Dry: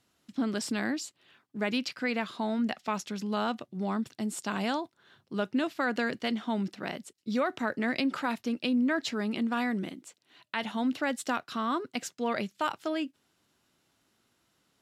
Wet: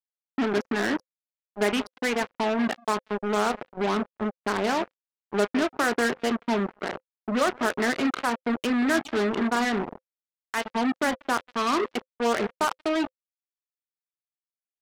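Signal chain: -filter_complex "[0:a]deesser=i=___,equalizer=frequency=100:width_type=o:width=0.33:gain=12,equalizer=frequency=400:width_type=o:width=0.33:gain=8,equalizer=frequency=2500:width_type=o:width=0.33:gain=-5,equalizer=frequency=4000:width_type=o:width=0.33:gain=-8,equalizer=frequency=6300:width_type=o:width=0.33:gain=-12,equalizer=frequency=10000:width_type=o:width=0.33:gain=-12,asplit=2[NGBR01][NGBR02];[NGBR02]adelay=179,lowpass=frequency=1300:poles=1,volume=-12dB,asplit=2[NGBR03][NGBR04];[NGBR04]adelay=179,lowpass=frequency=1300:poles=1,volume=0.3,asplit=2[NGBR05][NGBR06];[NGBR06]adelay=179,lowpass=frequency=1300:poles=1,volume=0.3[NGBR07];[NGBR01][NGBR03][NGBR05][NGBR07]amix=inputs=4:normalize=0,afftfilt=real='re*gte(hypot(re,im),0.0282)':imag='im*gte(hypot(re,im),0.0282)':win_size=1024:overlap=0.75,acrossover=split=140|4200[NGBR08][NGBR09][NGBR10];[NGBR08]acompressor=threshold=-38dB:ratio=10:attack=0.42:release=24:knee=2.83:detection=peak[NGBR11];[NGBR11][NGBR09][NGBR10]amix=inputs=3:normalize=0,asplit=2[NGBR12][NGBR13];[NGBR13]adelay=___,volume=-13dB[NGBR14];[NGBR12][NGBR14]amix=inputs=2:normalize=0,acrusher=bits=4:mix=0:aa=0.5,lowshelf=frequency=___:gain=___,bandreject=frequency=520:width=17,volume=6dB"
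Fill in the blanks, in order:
0.75, 34, 200, -10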